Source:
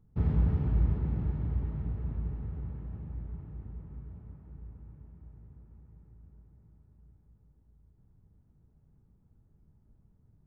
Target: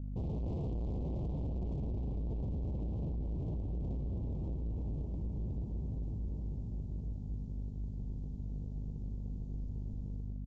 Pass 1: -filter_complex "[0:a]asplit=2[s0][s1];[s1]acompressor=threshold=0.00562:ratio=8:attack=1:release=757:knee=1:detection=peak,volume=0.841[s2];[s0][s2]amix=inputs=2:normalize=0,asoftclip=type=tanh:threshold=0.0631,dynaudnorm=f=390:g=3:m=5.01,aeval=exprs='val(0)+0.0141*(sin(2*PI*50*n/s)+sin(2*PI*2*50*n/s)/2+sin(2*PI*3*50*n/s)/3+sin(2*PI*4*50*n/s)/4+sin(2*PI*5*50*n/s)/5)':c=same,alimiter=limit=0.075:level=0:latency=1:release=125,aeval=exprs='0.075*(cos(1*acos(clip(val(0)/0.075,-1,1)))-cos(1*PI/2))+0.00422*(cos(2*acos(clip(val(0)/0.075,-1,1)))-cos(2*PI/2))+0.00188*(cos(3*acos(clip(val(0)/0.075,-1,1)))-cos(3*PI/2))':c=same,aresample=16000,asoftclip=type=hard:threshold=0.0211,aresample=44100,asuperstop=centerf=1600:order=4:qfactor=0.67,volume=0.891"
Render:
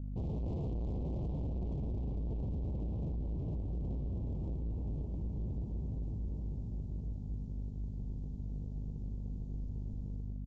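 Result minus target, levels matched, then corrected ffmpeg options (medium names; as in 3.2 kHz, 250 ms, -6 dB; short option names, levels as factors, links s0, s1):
compression: peak gain reduction +6.5 dB
-filter_complex "[0:a]asplit=2[s0][s1];[s1]acompressor=threshold=0.0133:ratio=8:attack=1:release=757:knee=1:detection=peak,volume=0.841[s2];[s0][s2]amix=inputs=2:normalize=0,asoftclip=type=tanh:threshold=0.0631,dynaudnorm=f=390:g=3:m=5.01,aeval=exprs='val(0)+0.0141*(sin(2*PI*50*n/s)+sin(2*PI*2*50*n/s)/2+sin(2*PI*3*50*n/s)/3+sin(2*PI*4*50*n/s)/4+sin(2*PI*5*50*n/s)/5)':c=same,alimiter=limit=0.075:level=0:latency=1:release=125,aeval=exprs='0.075*(cos(1*acos(clip(val(0)/0.075,-1,1)))-cos(1*PI/2))+0.00422*(cos(2*acos(clip(val(0)/0.075,-1,1)))-cos(2*PI/2))+0.00188*(cos(3*acos(clip(val(0)/0.075,-1,1)))-cos(3*PI/2))':c=same,aresample=16000,asoftclip=type=hard:threshold=0.0211,aresample=44100,asuperstop=centerf=1600:order=4:qfactor=0.67,volume=0.891"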